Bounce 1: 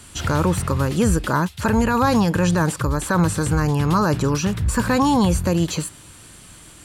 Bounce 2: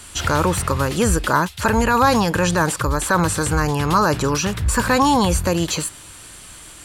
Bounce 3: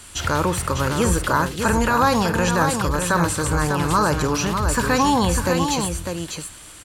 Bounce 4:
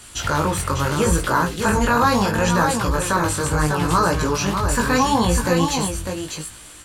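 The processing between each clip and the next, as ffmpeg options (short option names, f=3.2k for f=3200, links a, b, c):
-af "equalizer=f=160:w=0.54:g=-8,volume=5dB"
-af "aecho=1:1:52|374|600:0.178|0.112|0.501,volume=-2.5dB"
-af "flanger=delay=17:depth=4.3:speed=0.74,volume=3.5dB"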